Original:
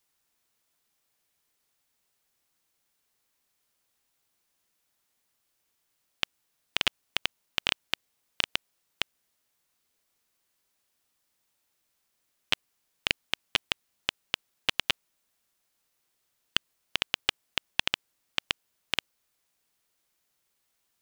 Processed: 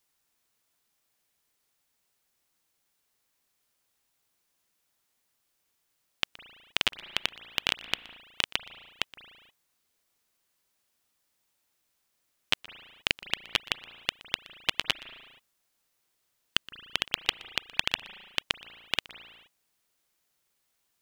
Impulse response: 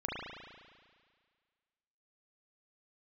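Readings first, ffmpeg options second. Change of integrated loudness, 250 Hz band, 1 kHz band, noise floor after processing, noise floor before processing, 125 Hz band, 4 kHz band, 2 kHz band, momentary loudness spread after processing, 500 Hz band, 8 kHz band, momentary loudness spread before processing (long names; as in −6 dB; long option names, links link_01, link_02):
0.0 dB, 0.0 dB, 0.0 dB, −77 dBFS, −77 dBFS, 0.0 dB, 0.0 dB, 0.0 dB, 6 LU, 0.0 dB, 0.0 dB, 6 LU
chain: -filter_complex "[0:a]asplit=2[link_01][link_02];[1:a]atrim=start_sample=2205,afade=type=out:start_time=0.41:duration=0.01,atrim=end_sample=18522,adelay=121[link_03];[link_02][link_03]afir=irnorm=-1:irlink=0,volume=-19.5dB[link_04];[link_01][link_04]amix=inputs=2:normalize=0"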